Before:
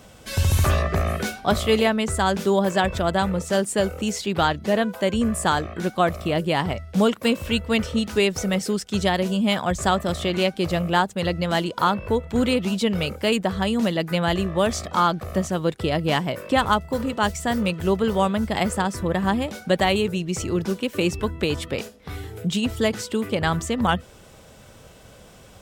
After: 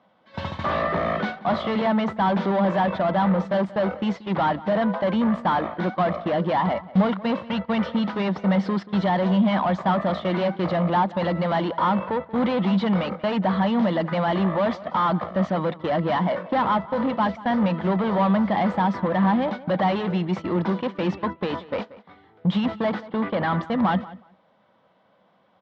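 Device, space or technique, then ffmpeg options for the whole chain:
overdrive pedal into a guitar cabinet: -filter_complex "[0:a]highpass=f=120:p=1,asplit=2[a][b];[b]highpass=f=720:p=1,volume=29dB,asoftclip=type=tanh:threshold=-5.5dB[c];[a][c]amix=inputs=2:normalize=0,lowpass=f=1.3k:p=1,volume=-6dB,highpass=87,equalizer=f=120:t=q:w=4:g=-3,equalizer=f=190:t=q:w=4:g=7,equalizer=f=420:t=q:w=4:g=-9,equalizer=f=950:t=q:w=4:g=4,equalizer=f=1.5k:t=q:w=4:g=-4,equalizer=f=2.6k:t=q:w=4:g=-9,lowpass=f=3.7k:w=0.5412,lowpass=f=3.7k:w=1.3066,agate=range=-21dB:threshold=-20dB:ratio=16:detection=peak,asettb=1/sr,asplit=3[d][e][f];[d]atrim=end=23.084[g];[e]atrim=start=23.08:end=23.63,asetpts=PTS-STARTPTS,afade=t=in:d=0.004:c=qsin,afade=t=out:st=0.546:d=0.004:c=qsin,lowpass=f=5k:w=0.5412,lowpass=f=5k:w=1.3066[h];[f]atrim=start=23.626[i];[g][h]acrossfade=d=0.004:c1=hsin:c2=qsin[j];[j][i]acrossfade=d=0.004:c1=qsin:c2=hsin,asplit=2[k][l];[l]adelay=183,lowpass=f=3.3k:p=1,volume=-18dB,asplit=2[m][n];[n]adelay=183,lowpass=f=3.3k:p=1,volume=0.16[o];[k][m][o]amix=inputs=3:normalize=0,volume=-7dB"

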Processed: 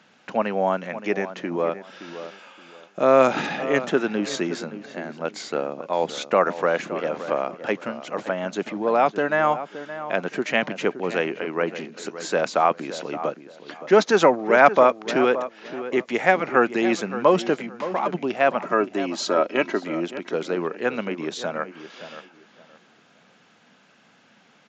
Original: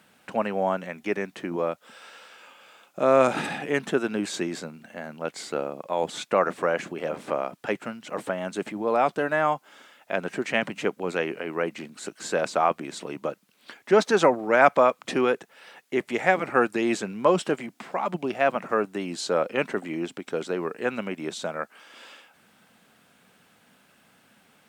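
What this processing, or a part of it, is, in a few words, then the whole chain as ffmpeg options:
Bluetooth headset: -filter_complex "[0:a]asettb=1/sr,asplit=3[a][b][c];[a]atrim=end=18.634[d];[b]atrim=start=18.63:end=19.83,asetpts=PTS-STARTPTS,afade=t=in:d=0.004:c=qsin,afade=t=out:st=1.196:d=0.004:c=qsin,aecho=1:1:3.1:0.54,atrim=end_sample=52920[e];[c]atrim=start=19.826[f];[d][e]acrossfade=d=0.004:c1=hsin:c2=qsin[g];[g][f]acrossfade=d=0.004:c1=qsin:c2=hsin,highpass=130,asplit=2[h][i];[i]adelay=570,lowpass=f=2k:p=1,volume=-12dB,asplit=2[j][k];[k]adelay=570,lowpass=f=2k:p=1,volume=0.25,asplit=2[l][m];[m]adelay=570,lowpass=f=2k:p=1,volume=0.25[n];[h][j][l][n]amix=inputs=4:normalize=0,aresample=16000,aresample=44100,volume=3dB" -ar 16000 -c:a sbc -b:a 64k

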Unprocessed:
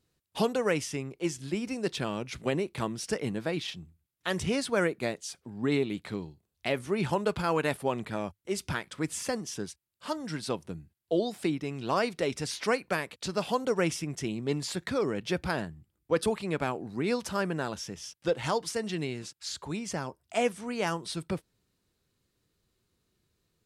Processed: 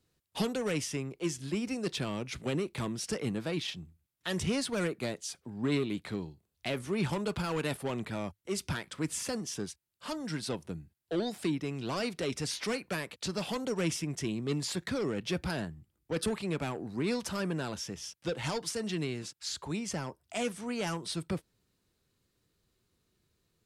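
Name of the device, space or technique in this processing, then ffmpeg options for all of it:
one-band saturation: -filter_complex "[0:a]acrossover=split=300|2600[a][b][c];[b]asoftclip=type=tanh:threshold=-33.5dB[d];[a][d][c]amix=inputs=3:normalize=0"

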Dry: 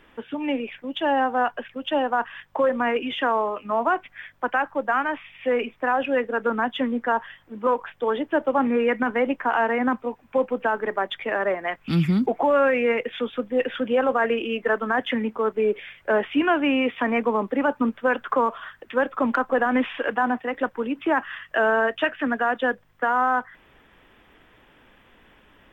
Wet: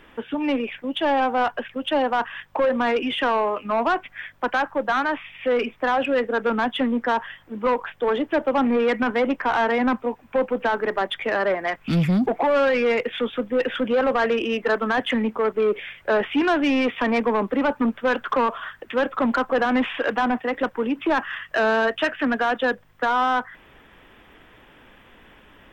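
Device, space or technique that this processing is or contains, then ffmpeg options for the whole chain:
saturation between pre-emphasis and de-emphasis: -af "highshelf=f=4.3k:g=8,asoftclip=type=tanh:threshold=-19.5dB,highshelf=f=4.3k:g=-8,volume=4.5dB"

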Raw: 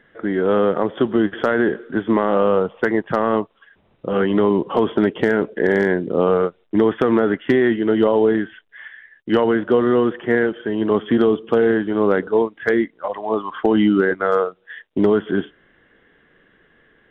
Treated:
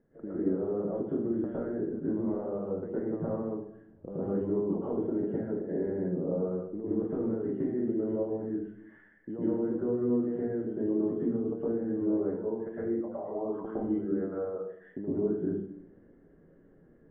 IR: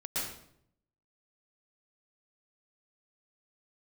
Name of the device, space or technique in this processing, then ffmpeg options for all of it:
television next door: -filter_complex "[0:a]acompressor=threshold=-27dB:ratio=6,lowpass=490[a];[1:a]atrim=start_sample=2205[b];[a][b]afir=irnorm=-1:irlink=0,volume=-4dB"

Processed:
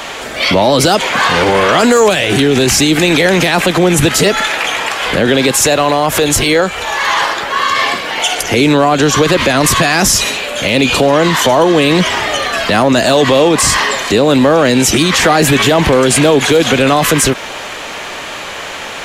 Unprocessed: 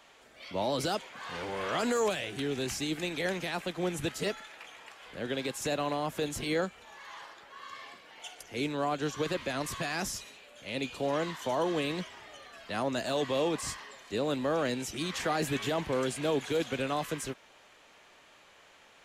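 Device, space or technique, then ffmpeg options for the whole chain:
loud club master: -filter_complex "[0:a]acompressor=threshold=-34dB:ratio=2,asoftclip=type=hard:threshold=-27.5dB,alimiter=level_in=35.5dB:limit=-1dB:release=50:level=0:latency=1,asettb=1/sr,asplit=3[a][b][c];[a]atrim=end=5.604[d];[b]atrim=start=5.6:end=7.02,asetpts=PTS-STARTPTS,afade=t=in:d=0.004:c=qsin,afade=t=out:st=1.416:d=0.004:c=qsin,equalizer=f=210:w=1.4:g=-8[e];[c]atrim=start=7.016[f];[d][e]acrossfade=d=0.004:c1=hsin:c2=qsin[g];[g][f]acrossfade=d=0.004:c1=qsin:c2=hsin,volume=-1.5dB"

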